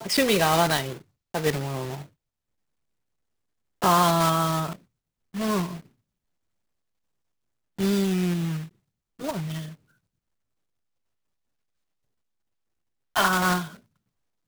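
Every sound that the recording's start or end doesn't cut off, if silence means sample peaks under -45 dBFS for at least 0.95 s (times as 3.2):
3.82–5.86
7.79–9.74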